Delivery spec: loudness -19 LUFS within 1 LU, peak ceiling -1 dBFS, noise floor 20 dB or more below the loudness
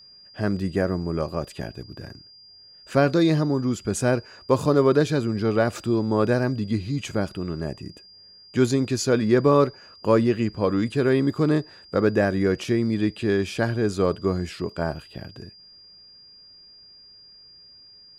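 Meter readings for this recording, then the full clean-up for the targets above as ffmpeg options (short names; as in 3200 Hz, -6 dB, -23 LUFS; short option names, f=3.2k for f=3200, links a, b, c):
steady tone 4800 Hz; tone level -47 dBFS; loudness -23.5 LUFS; peak -7.0 dBFS; loudness target -19.0 LUFS
-> -af "bandreject=f=4.8k:w=30"
-af "volume=4.5dB"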